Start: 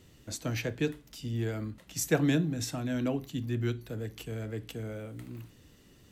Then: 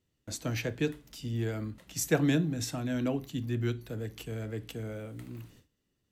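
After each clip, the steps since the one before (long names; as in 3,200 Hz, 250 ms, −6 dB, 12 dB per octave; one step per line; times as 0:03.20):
noise gate with hold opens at −46 dBFS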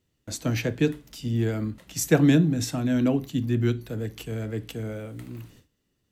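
dynamic equaliser 210 Hz, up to +5 dB, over −39 dBFS, Q 0.8
level +4.5 dB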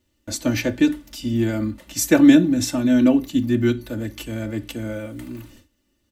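comb filter 3.4 ms, depth 85%
level +3.5 dB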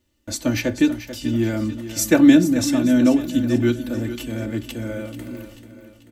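repeating echo 438 ms, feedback 50%, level −12 dB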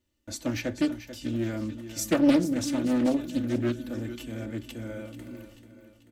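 highs frequency-modulated by the lows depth 0.49 ms
level −8.5 dB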